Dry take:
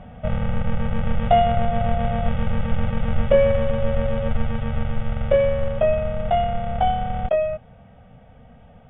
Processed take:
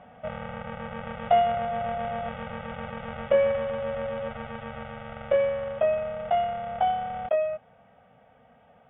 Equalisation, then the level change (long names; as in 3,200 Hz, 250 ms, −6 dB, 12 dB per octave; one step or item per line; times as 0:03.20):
resonant band-pass 1,200 Hz, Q 0.51
−2.5 dB